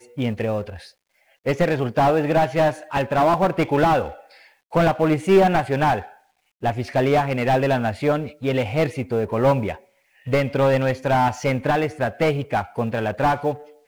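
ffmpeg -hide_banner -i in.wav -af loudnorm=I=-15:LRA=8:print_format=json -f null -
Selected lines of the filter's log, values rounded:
"input_i" : "-21.3",
"input_tp" : "-4.8",
"input_lra" : "2.3",
"input_thresh" : "-31.8",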